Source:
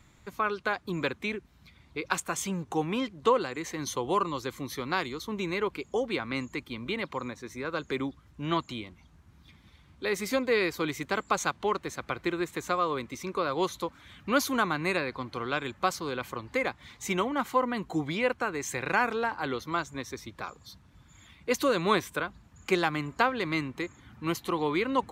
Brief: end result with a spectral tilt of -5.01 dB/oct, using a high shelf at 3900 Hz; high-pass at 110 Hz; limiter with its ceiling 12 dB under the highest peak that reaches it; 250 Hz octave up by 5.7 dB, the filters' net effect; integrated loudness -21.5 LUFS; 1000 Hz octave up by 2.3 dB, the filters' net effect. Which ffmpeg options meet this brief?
-af "highpass=110,equalizer=f=250:t=o:g=7.5,equalizer=f=1k:t=o:g=3,highshelf=f=3.9k:g=-8.5,volume=10.5dB,alimiter=limit=-10.5dB:level=0:latency=1"

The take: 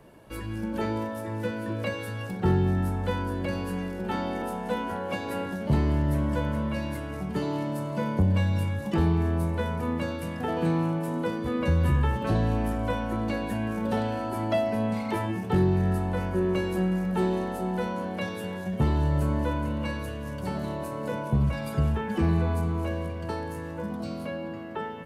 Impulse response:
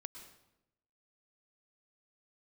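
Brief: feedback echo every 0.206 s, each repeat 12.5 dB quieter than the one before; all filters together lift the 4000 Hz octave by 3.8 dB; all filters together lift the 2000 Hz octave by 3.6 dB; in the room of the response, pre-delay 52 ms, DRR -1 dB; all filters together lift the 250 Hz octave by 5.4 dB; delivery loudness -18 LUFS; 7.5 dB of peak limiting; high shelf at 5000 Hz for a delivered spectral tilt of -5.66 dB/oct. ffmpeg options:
-filter_complex "[0:a]equalizer=f=250:t=o:g=7.5,equalizer=f=2k:t=o:g=4,equalizer=f=4k:t=o:g=5,highshelf=f=5k:g=-4,alimiter=limit=-17.5dB:level=0:latency=1,aecho=1:1:206|412|618:0.237|0.0569|0.0137,asplit=2[a][b];[1:a]atrim=start_sample=2205,adelay=52[c];[b][c]afir=irnorm=-1:irlink=0,volume=5dB[d];[a][d]amix=inputs=2:normalize=0,volume=6.5dB"

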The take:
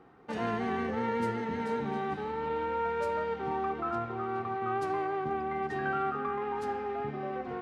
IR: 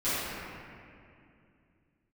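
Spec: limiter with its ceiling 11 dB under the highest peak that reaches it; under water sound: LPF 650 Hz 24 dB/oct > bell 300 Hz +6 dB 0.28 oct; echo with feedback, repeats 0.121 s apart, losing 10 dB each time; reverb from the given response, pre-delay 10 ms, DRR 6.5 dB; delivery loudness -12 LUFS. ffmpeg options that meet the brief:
-filter_complex "[0:a]alimiter=level_in=6dB:limit=-24dB:level=0:latency=1,volume=-6dB,aecho=1:1:121|242|363|484:0.316|0.101|0.0324|0.0104,asplit=2[a][b];[1:a]atrim=start_sample=2205,adelay=10[c];[b][c]afir=irnorm=-1:irlink=0,volume=-18dB[d];[a][d]amix=inputs=2:normalize=0,lowpass=f=650:w=0.5412,lowpass=f=650:w=1.3066,equalizer=f=300:t=o:w=0.28:g=6,volume=26dB"

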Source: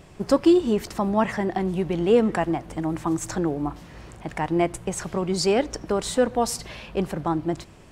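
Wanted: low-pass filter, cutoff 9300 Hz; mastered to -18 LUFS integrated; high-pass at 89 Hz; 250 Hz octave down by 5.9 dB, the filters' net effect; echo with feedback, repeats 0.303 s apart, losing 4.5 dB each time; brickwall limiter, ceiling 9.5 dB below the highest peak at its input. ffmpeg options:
-af "highpass=89,lowpass=9.3k,equalizer=f=250:t=o:g=-9,alimiter=limit=-18dB:level=0:latency=1,aecho=1:1:303|606|909|1212|1515|1818|2121|2424|2727:0.596|0.357|0.214|0.129|0.0772|0.0463|0.0278|0.0167|0.01,volume=10.5dB"

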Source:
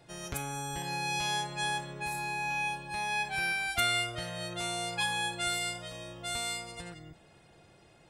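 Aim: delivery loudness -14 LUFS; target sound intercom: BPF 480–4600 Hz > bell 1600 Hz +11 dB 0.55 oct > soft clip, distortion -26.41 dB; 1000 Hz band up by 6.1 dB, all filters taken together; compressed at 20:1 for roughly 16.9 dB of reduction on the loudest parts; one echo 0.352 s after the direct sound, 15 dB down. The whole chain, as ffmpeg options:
-af "equalizer=f=1k:t=o:g=6,acompressor=threshold=-39dB:ratio=20,highpass=480,lowpass=4.6k,equalizer=f=1.6k:t=o:w=0.55:g=11,aecho=1:1:352:0.178,asoftclip=threshold=-27.5dB,volume=25.5dB"

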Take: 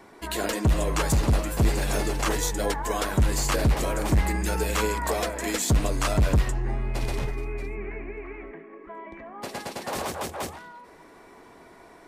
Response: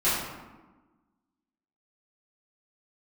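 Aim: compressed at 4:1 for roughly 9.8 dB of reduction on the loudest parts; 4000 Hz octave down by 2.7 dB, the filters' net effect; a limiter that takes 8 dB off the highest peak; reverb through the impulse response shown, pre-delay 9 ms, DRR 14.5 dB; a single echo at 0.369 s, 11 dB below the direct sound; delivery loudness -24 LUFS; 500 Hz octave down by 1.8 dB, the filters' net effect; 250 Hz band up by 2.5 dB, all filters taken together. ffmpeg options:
-filter_complex "[0:a]equalizer=f=250:t=o:g=4.5,equalizer=f=500:t=o:g=-3.5,equalizer=f=4k:t=o:g=-3.5,acompressor=threshold=-28dB:ratio=4,alimiter=level_in=1dB:limit=-24dB:level=0:latency=1,volume=-1dB,aecho=1:1:369:0.282,asplit=2[a][b];[1:a]atrim=start_sample=2205,adelay=9[c];[b][c]afir=irnorm=-1:irlink=0,volume=-28.5dB[d];[a][d]amix=inputs=2:normalize=0,volume=11dB"

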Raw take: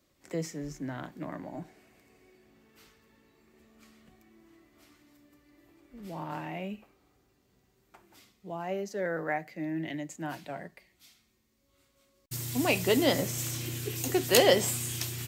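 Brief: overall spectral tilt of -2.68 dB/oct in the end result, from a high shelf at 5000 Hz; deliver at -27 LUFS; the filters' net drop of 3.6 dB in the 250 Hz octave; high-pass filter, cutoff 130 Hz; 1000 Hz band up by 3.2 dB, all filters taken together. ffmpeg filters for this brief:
-af "highpass=130,equalizer=f=250:t=o:g=-5,equalizer=f=1k:t=o:g=5,highshelf=f=5k:g=4.5,volume=2.5dB"

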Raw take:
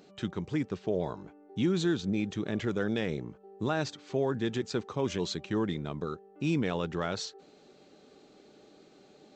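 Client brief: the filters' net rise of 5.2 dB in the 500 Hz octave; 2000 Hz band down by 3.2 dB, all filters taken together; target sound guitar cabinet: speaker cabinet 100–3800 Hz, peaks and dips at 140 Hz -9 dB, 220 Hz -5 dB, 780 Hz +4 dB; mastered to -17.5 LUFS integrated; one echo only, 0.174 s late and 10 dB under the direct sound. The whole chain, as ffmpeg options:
-af "highpass=100,equalizer=f=140:t=q:w=4:g=-9,equalizer=f=220:t=q:w=4:g=-5,equalizer=f=780:t=q:w=4:g=4,lowpass=f=3.8k:w=0.5412,lowpass=f=3.8k:w=1.3066,equalizer=f=500:t=o:g=7,equalizer=f=2k:t=o:g=-5,aecho=1:1:174:0.316,volume=12.5dB"

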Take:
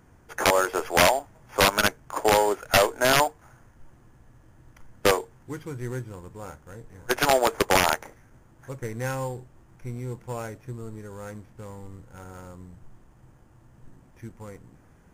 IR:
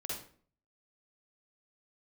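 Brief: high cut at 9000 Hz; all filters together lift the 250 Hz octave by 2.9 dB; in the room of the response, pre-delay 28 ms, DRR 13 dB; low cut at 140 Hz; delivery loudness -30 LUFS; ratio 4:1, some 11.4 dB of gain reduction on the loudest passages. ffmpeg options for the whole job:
-filter_complex "[0:a]highpass=140,lowpass=9k,equalizer=f=250:t=o:g=4.5,acompressor=threshold=-28dB:ratio=4,asplit=2[a][b];[1:a]atrim=start_sample=2205,adelay=28[c];[b][c]afir=irnorm=-1:irlink=0,volume=-13.5dB[d];[a][d]amix=inputs=2:normalize=0,volume=4dB"

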